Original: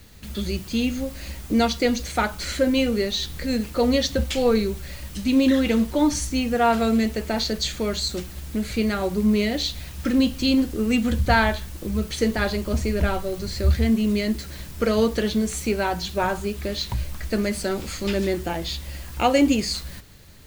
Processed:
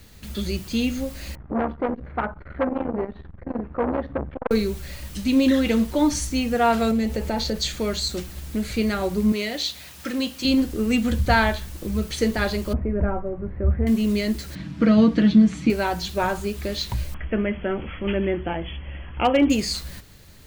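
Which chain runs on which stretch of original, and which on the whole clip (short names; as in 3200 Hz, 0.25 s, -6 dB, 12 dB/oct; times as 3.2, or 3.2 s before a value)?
1.35–4.51 LPF 1500 Hz 24 dB/oct + core saturation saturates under 810 Hz
6.91–7.58 tone controls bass +6 dB, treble 0 dB + small resonant body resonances 530/830 Hz, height 10 dB, ringing for 35 ms + compressor 2:1, threshold -23 dBFS
9.32–10.45 HPF 77 Hz + low shelf 320 Hz -12 dB
12.73–13.87 Gaussian blur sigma 5.8 samples + doubler 20 ms -13 dB
14.55–15.7 BPF 110–3200 Hz + resonant low shelf 340 Hz +7 dB, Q 3 + comb 6.2 ms, depth 54%
17.14–19.5 brick-wall FIR low-pass 3400 Hz + hard clip -11 dBFS
whole clip: dry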